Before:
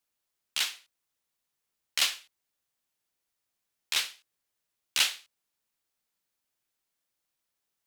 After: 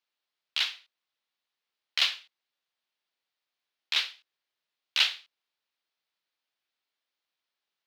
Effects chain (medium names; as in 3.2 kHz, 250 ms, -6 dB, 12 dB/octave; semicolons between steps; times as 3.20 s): high-pass 520 Hz 6 dB/octave; resonant high shelf 5.9 kHz -14 dB, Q 1.5